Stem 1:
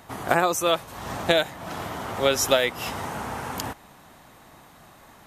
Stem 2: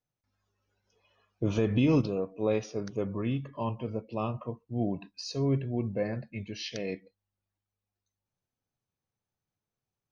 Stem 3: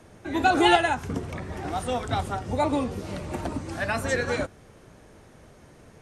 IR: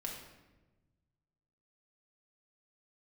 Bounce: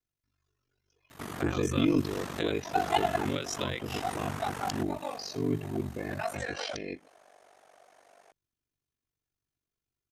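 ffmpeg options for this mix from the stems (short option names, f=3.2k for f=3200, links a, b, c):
-filter_complex "[0:a]acrossover=split=7700[a][b];[b]acompressor=threshold=-48dB:ratio=4:attack=1:release=60[c];[a][c]amix=inputs=2:normalize=0,highpass=94,acompressor=threshold=-32dB:ratio=3,adelay=1100,volume=2dB[d];[1:a]aecho=1:1:2.9:0.56,volume=1dB,asplit=2[e][f];[2:a]highpass=f=710:t=q:w=8.1,adelay=2300,volume=-3dB[g];[f]apad=whole_len=366872[h];[g][h]sidechaincompress=threshold=-37dB:ratio=8:attack=11:release=208[i];[d][e][i]amix=inputs=3:normalize=0,equalizer=f=760:w=1.5:g=-8.5,aeval=exprs='val(0)*sin(2*PI*24*n/s)':c=same"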